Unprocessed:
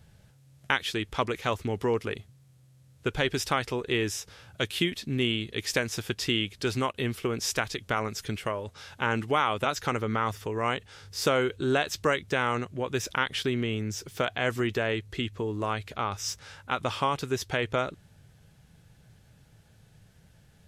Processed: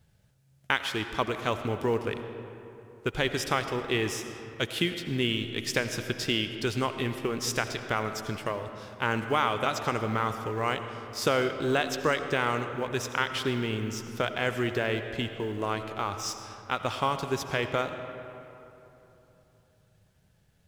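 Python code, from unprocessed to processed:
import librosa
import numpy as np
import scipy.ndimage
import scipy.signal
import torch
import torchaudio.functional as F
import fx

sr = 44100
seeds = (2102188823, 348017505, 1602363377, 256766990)

y = fx.law_mismatch(x, sr, coded='A')
y = fx.rev_freeverb(y, sr, rt60_s=3.2, hf_ratio=0.5, predelay_ms=45, drr_db=8.0)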